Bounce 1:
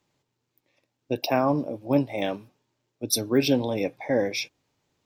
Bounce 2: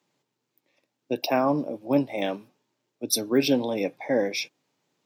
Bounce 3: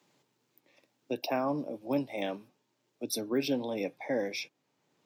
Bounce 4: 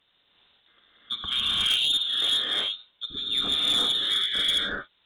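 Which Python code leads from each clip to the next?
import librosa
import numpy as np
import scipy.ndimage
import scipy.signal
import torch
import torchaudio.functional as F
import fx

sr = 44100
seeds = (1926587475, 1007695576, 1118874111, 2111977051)

y1 = scipy.signal.sosfilt(scipy.signal.butter(4, 150.0, 'highpass', fs=sr, output='sos'), x)
y2 = fx.band_squash(y1, sr, depth_pct=40)
y2 = y2 * 10.0 ** (-7.5 / 20.0)
y3 = fx.rev_gated(y2, sr, seeds[0], gate_ms=410, shape='rising', drr_db=-7.5)
y3 = fx.freq_invert(y3, sr, carrier_hz=3900)
y3 = fx.cheby_harmonics(y3, sr, harmonics=(3, 5, 6, 8), levels_db=(-15, -16, -23, -26), full_scale_db=-10.5)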